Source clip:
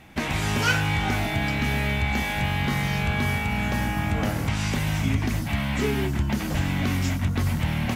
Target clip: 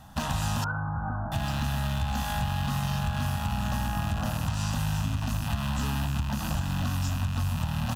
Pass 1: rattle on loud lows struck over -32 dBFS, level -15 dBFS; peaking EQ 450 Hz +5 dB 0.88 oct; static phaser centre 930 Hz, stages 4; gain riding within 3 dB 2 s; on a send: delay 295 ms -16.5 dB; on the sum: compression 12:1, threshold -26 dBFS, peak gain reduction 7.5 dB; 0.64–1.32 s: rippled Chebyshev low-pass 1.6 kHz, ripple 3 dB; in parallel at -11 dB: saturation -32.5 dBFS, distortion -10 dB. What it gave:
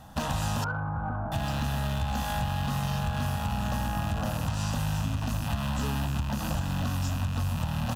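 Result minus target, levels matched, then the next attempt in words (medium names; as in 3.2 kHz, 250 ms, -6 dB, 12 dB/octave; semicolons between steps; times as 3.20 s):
saturation: distortion +11 dB; 500 Hz band +4.0 dB
rattle on loud lows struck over -32 dBFS, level -15 dBFS; peaking EQ 450 Hz -3.5 dB 0.88 oct; static phaser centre 930 Hz, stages 4; gain riding within 3 dB 2 s; on a send: delay 295 ms -16.5 dB; on the sum: compression 12:1, threshold -26 dBFS, peak gain reduction 7.5 dB; 0.64–1.32 s: rippled Chebyshev low-pass 1.6 kHz, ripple 3 dB; in parallel at -11 dB: saturation -22.5 dBFS, distortion -21 dB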